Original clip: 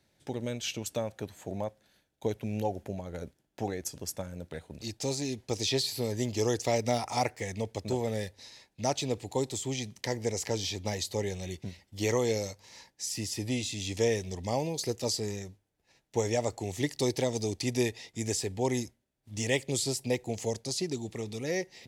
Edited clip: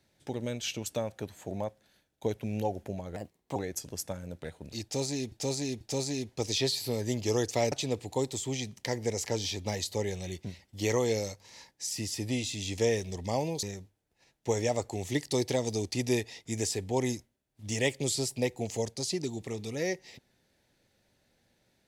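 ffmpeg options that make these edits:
ffmpeg -i in.wav -filter_complex "[0:a]asplit=7[link_01][link_02][link_03][link_04][link_05][link_06][link_07];[link_01]atrim=end=3.164[link_08];[link_02]atrim=start=3.16:end=3.65,asetpts=PTS-STARTPTS,asetrate=54243,aresample=44100,atrim=end_sample=17568,asetpts=PTS-STARTPTS[link_09];[link_03]atrim=start=3.646:end=5.412[link_10];[link_04]atrim=start=4.918:end=5.412[link_11];[link_05]atrim=start=4.918:end=6.832[link_12];[link_06]atrim=start=8.908:end=14.822[link_13];[link_07]atrim=start=15.308[link_14];[link_08][link_09]acrossfade=duration=0.004:curve1=hsin:curve2=hsin[link_15];[link_15][link_10]acrossfade=duration=0.004:curve1=hsin:curve2=hsin[link_16];[link_16][link_11]acrossfade=duration=0.004:curve1=hsin:curve2=hsin[link_17];[link_17][link_12]acrossfade=duration=0.004:curve1=hsin:curve2=hsin[link_18];[link_18][link_13]acrossfade=duration=0.004:curve1=hsin:curve2=hsin[link_19];[link_19][link_14]acrossfade=duration=0.004:curve1=hsin:curve2=hsin" out.wav

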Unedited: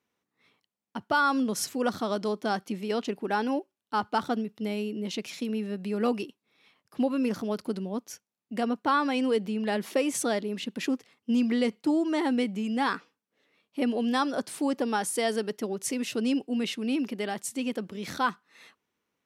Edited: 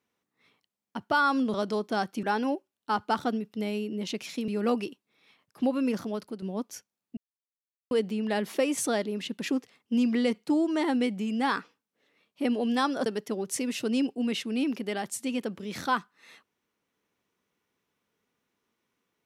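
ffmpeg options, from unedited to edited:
ffmpeg -i in.wav -filter_complex "[0:a]asplit=8[link_01][link_02][link_03][link_04][link_05][link_06][link_07][link_08];[link_01]atrim=end=1.542[link_09];[link_02]atrim=start=2.068:end=2.762[link_10];[link_03]atrim=start=3.268:end=5.522[link_11];[link_04]atrim=start=5.848:end=7.79,asetpts=PTS-STARTPTS,afade=type=out:start_time=1.272:duration=0.67:curve=qsin:silence=0.316228[link_12];[link_05]atrim=start=7.79:end=8.54,asetpts=PTS-STARTPTS,afade=type=in:duration=0.004:curve=hsin:silence=0.316228,afade=type=out:start_time=0.746:duration=0.004:curve=hsin[link_13];[link_06]atrim=start=8.54:end=9.28,asetpts=PTS-STARTPTS,volume=0[link_14];[link_07]atrim=start=9.28:end=14.432,asetpts=PTS-STARTPTS,afade=type=in:duration=0.004:curve=hsin[link_15];[link_08]atrim=start=15.378[link_16];[link_09][link_10]acrossfade=duration=0.004:curve1=hsin:curve2=hsin[link_17];[link_17][link_11]acrossfade=duration=0.004:curve1=hsin:curve2=hsin[link_18];[link_12][link_13][link_14][link_15]concat=n=4:v=0:a=1[link_19];[link_18][link_19]acrossfade=duration=0.004:curve1=hsin:curve2=hsin[link_20];[link_20][link_16]acrossfade=duration=0.004:curve1=hsin:curve2=hsin" out.wav

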